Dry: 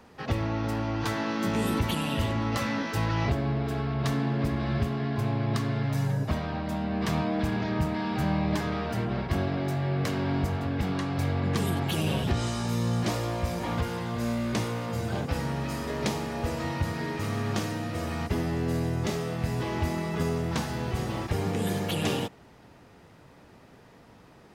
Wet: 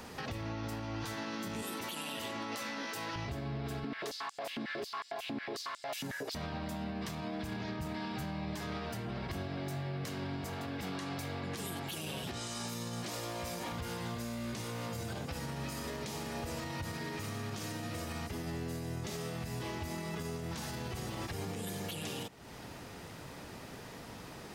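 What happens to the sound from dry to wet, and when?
1.62–3.16 HPF 290 Hz
3.84–6.35 stepped high-pass 11 Hz 250–7500 Hz
10.41–13.72 HPF 210 Hz 6 dB/oct
whole clip: high shelf 3200 Hz +9.5 dB; compressor 4:1, threshold -42 dBFS; limiter -35.5 dBFS; gain +5 dB

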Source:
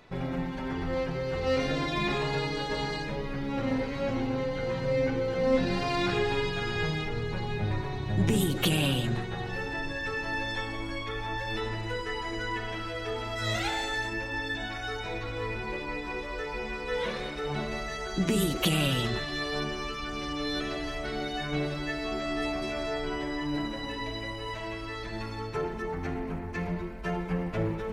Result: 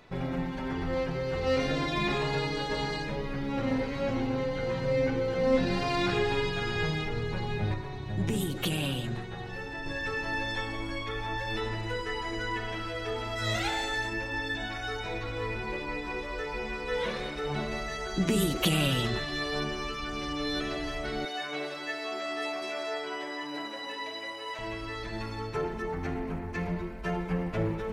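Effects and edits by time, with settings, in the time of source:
7.74–9.86 gain -4.5 dB
21.25–24.59 HPF 460 Hz

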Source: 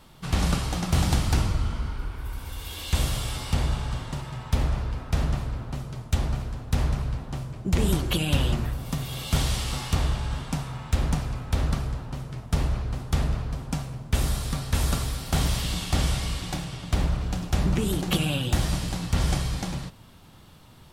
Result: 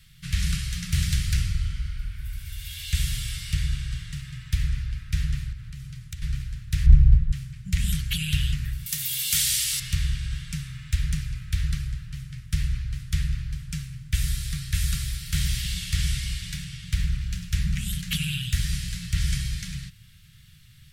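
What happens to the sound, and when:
5.52–6.22 compressor, threshold -32 dBFS
6.86–7.32 tilt -3.5 dB/oct
8.86–9.8 RIAA curve recording
whole clip: elliptic band-stop 150–1800 Hz, stop band 60 dB; dynamic EQ 120 Hz, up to -4 dB, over -41 dBFS, Q 3; gain +1 dB

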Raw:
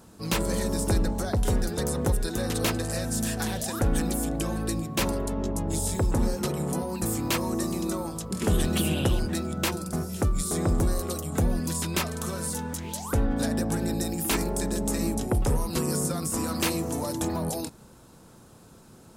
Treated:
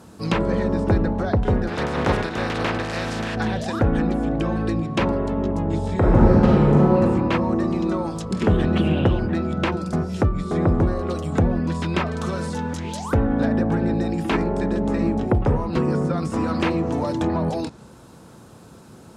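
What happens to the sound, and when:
1.67–3.34 spectral contrast lowered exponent 0.44
5.95–6.98 reverb throw, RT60 1.9 s, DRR -5 dB
whole clip: treble ducked by the level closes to 2200 Hz, closed at -23.5 dBFS; HPF 59 Hz; high shelf 5700 Hz -7 dB; gain +7 dB

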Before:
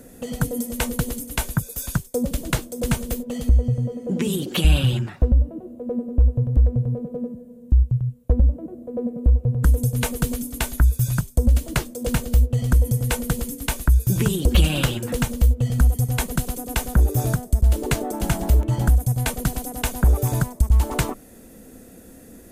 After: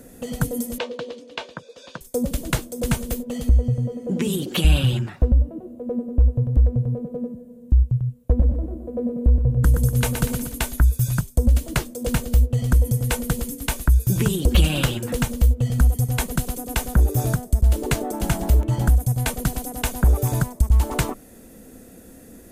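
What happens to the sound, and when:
0.78–2.01 speaker cabinet 440–4300 Hz, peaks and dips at 510 Hz +7 dB, 790 Hz -5 dB, 1400 Hz -6 dB, 2000 Hz -6 dB
8.18–10.53 feedback echo 0.121 s, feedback 43%, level -7 dB

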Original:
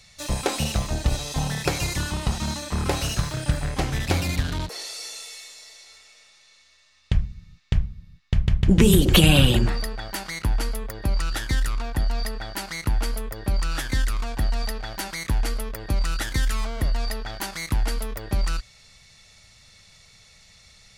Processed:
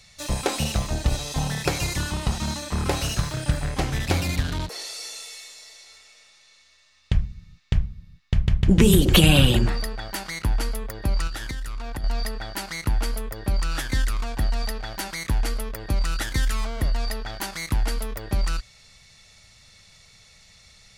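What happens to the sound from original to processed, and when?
11.27–12.04 compressor 10:1, threshold -27 dBFS

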